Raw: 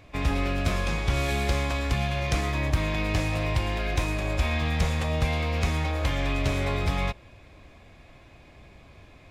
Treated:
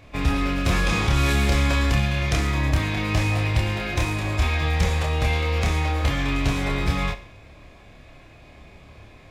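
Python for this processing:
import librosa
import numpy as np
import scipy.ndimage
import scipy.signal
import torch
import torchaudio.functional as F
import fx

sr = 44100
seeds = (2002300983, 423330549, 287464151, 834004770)

p1 = fx.doubler(x, sr, ms=28.0, db=-3)
p2 = p1 + fx.echo_feedback(p1, sr, ms=68, feedback_pct=46, wet_db=-15.5, dry=0)
p3 = fx.env_flatten(p2, sr, amount_pct=50, at=(0.66, 2.0))
y = p3 * librosa.db_to_amplitude(2.0)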